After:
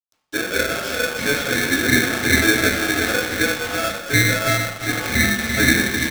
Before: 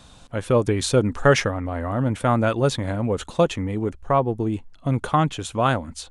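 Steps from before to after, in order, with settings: self-modulated delay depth 0.077 ms; high-pass 310 Hz 12 dB/octave; comb 6.4 ms, depth 47%; compression 2:1, threshold -37 dBFS, peak gain reduction 14 dB; waveshaping leveller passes 3; vowel filter a; saturation -22 dBFS, distortion -20 dB; thinning echo 340 ms, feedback 53%, high-pass 860 Hz, level -3.5 dB; small samples zeroed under -42.5 dBFS; reverberation RT60 1.1 s, pre-delay 3 ms, DRR -9.5 dB; polarity switched at an audio rate 990 Hz; trim +6 dB

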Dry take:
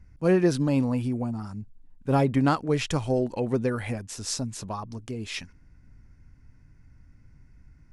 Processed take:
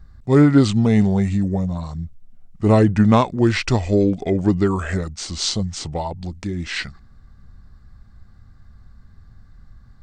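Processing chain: tape speed -21%; trim +8 dB

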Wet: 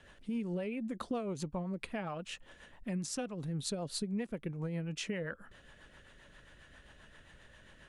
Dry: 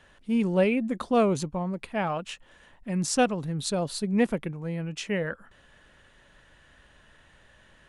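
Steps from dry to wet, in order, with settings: compression 10:1, threshold -34 dBFS, peak gain reduction 17 dB; rotary cabinet horn 7.5 Hz; trim +1.5 dB

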